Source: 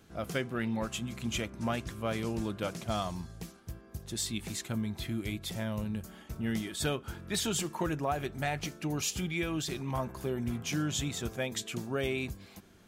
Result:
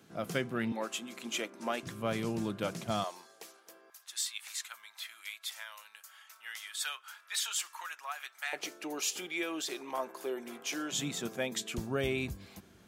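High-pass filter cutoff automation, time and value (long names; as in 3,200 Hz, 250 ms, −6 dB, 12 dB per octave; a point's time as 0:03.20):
high-pass filter 24 dB per octave
120 Hz
from 0:00.72 280 Hz
from 0:01.83 110 Hz
from 0:03.04 420 Hz
from 0:03.90 1,100 Hz
from 0:08.53 340 Hz
from 0:10.92 160 Hz
from 0:11.78 48 Hz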